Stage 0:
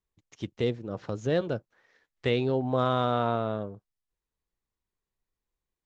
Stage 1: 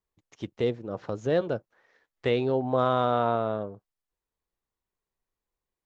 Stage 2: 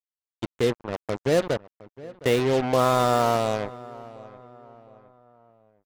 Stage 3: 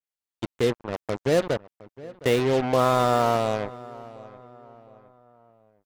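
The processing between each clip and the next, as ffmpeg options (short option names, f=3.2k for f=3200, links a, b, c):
-af "equalizer=f=720:t=o:w=2.7:g=6,volume=-3dB"
-filter_complex "[0:a]acrusher=bits=4:mix=0:aa=0.5,asplit=2[a][b];[b]adelay=713,lowpass=f=2k:p=1,volume=-19dB,asplit=2[c][d];[d]adelay=713,lowpass=f=2k:p=1,volume=0.44,asplit=2[e][f];[f]adelay=713,lowpass=f=2k:p=1,volume=0.44[g];[a][c][e][g]amix=inputs=4:normalize=0,volume=3.5dB"
-af "adynamicequalizer=threshold=0.01:dfrequency=4100:dqfactor=0.7:tfrequency=4100:tqfactor=0.7:attack=5:release=100:ratio=0.375:range=2:mode=cutabove:tftype=highshelf"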